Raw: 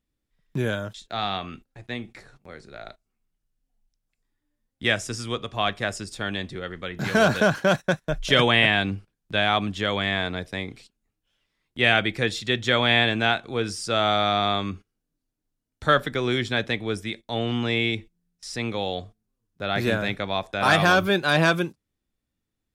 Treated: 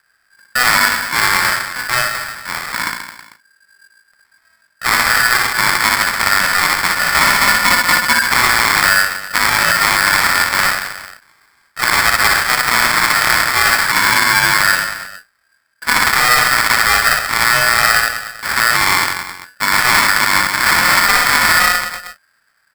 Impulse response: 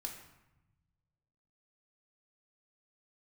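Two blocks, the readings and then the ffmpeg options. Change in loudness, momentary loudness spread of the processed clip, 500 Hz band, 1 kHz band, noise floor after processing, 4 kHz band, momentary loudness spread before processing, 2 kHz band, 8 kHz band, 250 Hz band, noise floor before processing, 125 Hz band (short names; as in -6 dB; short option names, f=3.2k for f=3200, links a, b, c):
+11.5 dB, 11 LU, -2.5 dB, +12.5 dB, -60 dBFS, +10.0 dB, 15 LU, +14.0 dB, +23.0 dB, -2.0 dB, -82 dBFS, -2.0 dB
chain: -filter_complex "[0:a]areverse,acompressor=threshold=-28dB:ratio=6,areverse,acrusher=samples=36:mix=1:aa=0.000001,asplit=2[a][b];[b]aecho=0:1:60|132|218.4|322.1|446.5:0.631|0.398|0.251|0.158|0.1[c];[a][c]amix=inputs=2:normalize=0,aresample=8000,aresample=44100,alimiter=level_in=20.5dB:limit=-1dB:release=50:level=0:latency=1,aeval=exprs='val(0)*sgn(sin(2*PI*1600*n/s))':c=same,volume=-2dB"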